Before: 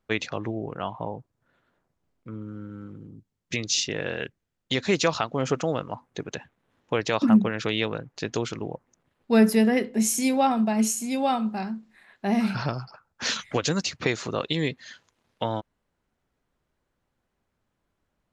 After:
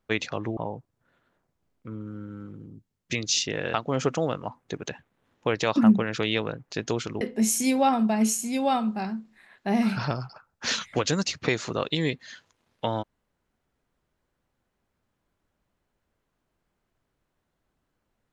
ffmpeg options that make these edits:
-filter_complex "[0:a]asplit=4[a][b][c][d];[a]atrim=end=0.572[e];[b]atrim=start=0.978:end=4.152[f];[c]atrim=start=5.198:end=8.672[g];[d]atrim=start=9.788[h];[e][f]acrossfade=d=0.004:c1=hsin:c2=hsin[i];[i][g]acrossfade=d=0.004:c1=hsin:c2=hsin[j];[j][h]acrossfade=d=0.004:c1=hsin:c2=hsin"

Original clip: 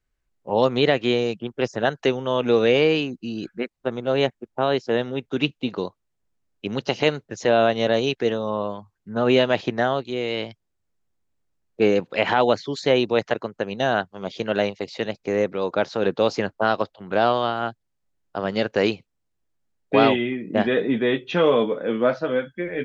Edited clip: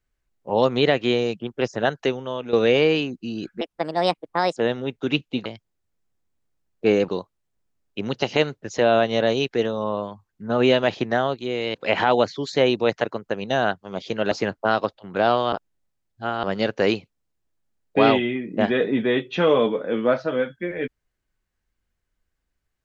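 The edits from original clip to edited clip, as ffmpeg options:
-filter_complex "[0:a]asplit=10[a][b][c][d][e][f][g][h][i][j];[a]atrim=end=2.53,asetpts=PTS-STARTPTS,afade=t=out:st=1.91:d=0.62:silence=0.237137[k];[b]atrim=start=2.53:end=3.614,asetpts=PTS-STARTPTS,afade=t=in:d=0.004:c=hsin:silence=0.237137[l];[c]atrim=start=3.61:end=4.86,asetpts=PTS-STARTPTS,asetrate=57771,aresample=44100,atrim=end_sample=42080,asetpts=PTS-STARTPTS[m];[d]atrim=start=4.856:end=5.752[n];[e]atrim=start=10.408:end=12.042[o];[f]atrim=start=5.748:end=10.412[p];[g]atrim=start=12.038:end=14.612[q];[h]atrim=start=16.278:end=17.492[r];[i]atrim=start=17.488:end=18.402,asetpts=PTS-STARTPTS,areverse[s];[j]atrim=start=18.398[t];[k][l]concat=n=2:v=0:a=1[u];[u][m]acrossfade=d=0.004:c1=hsin:c2=hsin[v];[v][n]acrossfade=d=0.004:c1=hsin:c2=hsin[w];[w][o]acrossfade=d=0.004:c1=hsin:c2=hsin[x];[x][p]acrossfade=d=0.004:c1=hsin:c2=hsin[y];[y][q]acrossfade=d=0.004:c1=hsin:c2=hsin[z];[z][r]acrossfade=d=0.004:c1=hsin:c2=hsin[aa];[aa][s]acrossfade=d=0.004:c1=hsin:c2=hsin[ab];[ab][t]acrossfade=d=0.004:c1=hsin:c2=hsin"

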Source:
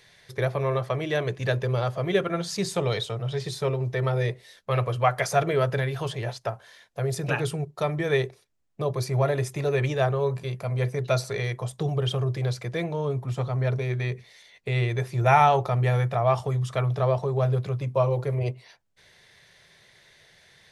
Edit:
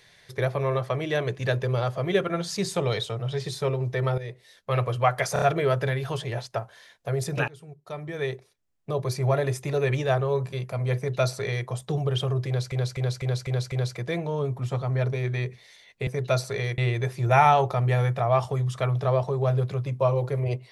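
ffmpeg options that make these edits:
-filter_complex "[0:a]asplit=13[a][b][c][d][e][f][g][h][i][j][k][l][m];[a]atrim=end=4.18,asetpts=PTS-STARTPTS,afade=t=out:st=4.176:d=0.004:c=hsin:silence=0.211349[n];[b]atrim=start=4.18:end=5.362,asetpts=PTS-STARTPTS,afade=t=in:d=0.57:silence=0.211349[o];[c]atrim=start=5.328:end=5.362[p];[d]atrim=start=5.328:end=5.362[q];[e]atrim=start=5.328:end=7.39,asetpts=PTS-STARTPTS,afade=t=out:st=2.058:d=0.004:c=hsin:silence=0.0668344[r];[f]atrim=start=7.39:end=12.632,asetpts=PTS-STARTPTS,afade=t=in:d=1.61:silence=0.0668344[s];[g]atrim=start=12.378:end=12.632[t];[h]atrim=start=12.378:end=12.632[u];[i]atrim=start=12.378:end=12.632[v];[j]atrim=start=12.378:end=12.632[w];[k]atrim=start=12.378:end=14.732[x];[l]atrim=start=10.868:end=11.582[y];[m]atrim=start=14.728[z];[n][o]concat=n=2:v=0:a=1[aa];[aa][p]acrossfade=d=0.004:c1=hsin:c2=hsin[ab];[ab][q]acrossfade=d=0.004:c1=hsin:c2=hsin[ac];[r][s]concat=n=2:v=0:a=1[ad];[ac][ad]acrossfade=d=0.004:c1=hsin:c2=hsin[ae];[ae][t]acrossfade=d=0.004:c1=hsin:c2=hsin[af];[af][u]acrossfade=d=0.004:c1=hsin:c2=hsin[ag];[ag][v]acrossfade=d=0.004:c1=hsin:c2=hsin[ah];[ah][w]acrossfade=d=0.004:c1=hsin:c2=hsin[ai];[ai][x]acrossfade=d=0.004:c1=hsin:c2=hsin[aj];[aj][y]acrossfade=d=0.004:c1=hsin:c2=hsin[ak];[ak][z]acrossfade=d=0.004:c1=hsin:c2=hsin"

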